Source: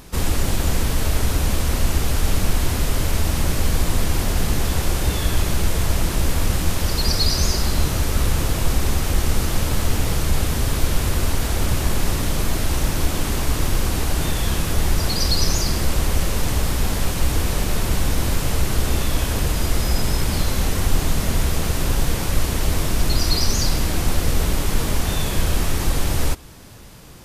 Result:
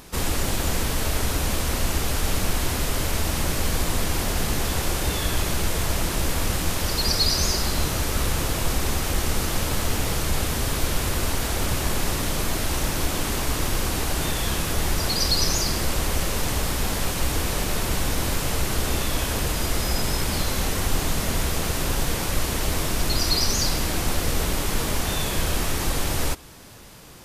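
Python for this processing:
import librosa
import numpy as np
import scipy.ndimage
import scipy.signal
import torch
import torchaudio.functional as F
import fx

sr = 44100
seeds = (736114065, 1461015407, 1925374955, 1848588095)

y = fx.low_shelf(x, sr, hz=220.0, db=-6.5)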